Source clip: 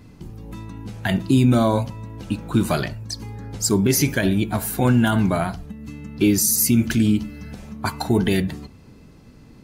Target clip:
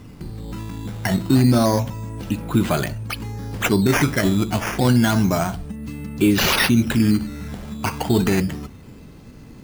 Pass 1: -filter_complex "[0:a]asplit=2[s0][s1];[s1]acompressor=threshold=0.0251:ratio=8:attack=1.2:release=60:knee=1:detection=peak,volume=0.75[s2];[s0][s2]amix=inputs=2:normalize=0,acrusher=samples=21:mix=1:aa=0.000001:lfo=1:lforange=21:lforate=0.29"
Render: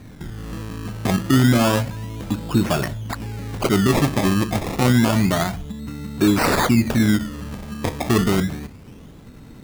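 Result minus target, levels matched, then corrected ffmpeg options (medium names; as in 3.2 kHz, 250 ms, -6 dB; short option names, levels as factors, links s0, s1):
decimation with a swept rate: distortion +4 dB
-filter_complex "[0:a]asplit=2[s0][s1];[s1]acompressor=threshold=0.0251:ratio=8:attack=1.2:release=60:knee=1:detection=peak,volume=0.75[s2];[s0][s2]amix=inputs=2:normalize=0,acrusher=samples=8:mix=1:aa=0.000001:lfo=1:lforange=8:lforate=0.29"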